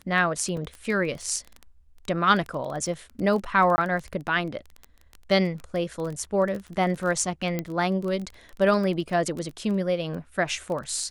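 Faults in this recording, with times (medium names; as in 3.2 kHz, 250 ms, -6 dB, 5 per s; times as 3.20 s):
crackle 16 per s -30 dBFS
0.57 s: dropout 2 ms
3.76–3.78 s: dropout 20 ms
7.59 s: pop -14 dBFS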